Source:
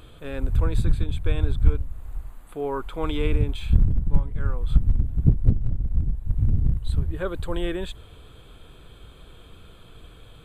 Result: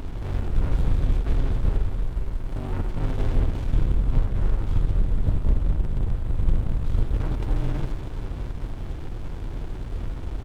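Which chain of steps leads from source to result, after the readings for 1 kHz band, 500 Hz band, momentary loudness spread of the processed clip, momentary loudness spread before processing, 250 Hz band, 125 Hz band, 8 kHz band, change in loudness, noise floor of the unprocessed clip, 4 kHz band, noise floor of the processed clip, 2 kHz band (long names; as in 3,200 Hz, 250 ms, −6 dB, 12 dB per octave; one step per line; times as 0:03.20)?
−1.5 dB, −5.0 dB, 10 LU, 11 LU, −1.5 dB, −1.5 dB, can't be measured, −2.0 dB, −48 dBFS, −6.5 dB, −33 dBFS, −3.5 dB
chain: compressor on every frequency bin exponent 0.4
on a send: multi-tap delay 45/81/181/368/541 ms −12/−7.5/−9/−18.5/−12 dB
on the sum: frequency shifter −47 Hz
windowed peak hold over 65 samples
level −7 dB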